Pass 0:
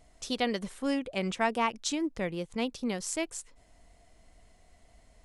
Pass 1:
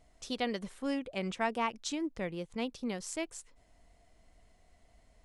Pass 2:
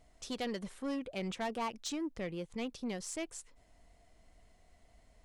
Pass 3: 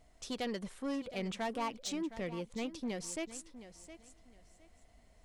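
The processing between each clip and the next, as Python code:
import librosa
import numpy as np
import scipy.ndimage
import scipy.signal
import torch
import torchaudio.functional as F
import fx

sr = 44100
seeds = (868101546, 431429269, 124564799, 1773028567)

y1 = fx.high_shelf(x, sr, hz=6800.0, db=-4.5)
y1 = y1 * 10.0 ** (-4.0 / 20.0)
y2 = 10.0 ** (-31.0 / 20.0) * np.tanh(y1 / 10.0 ** (-31.0 / 20.0))
y3 = fx.echo_feedback(y2, sr, ms=714, feedback_pct=23, wet_db=-14)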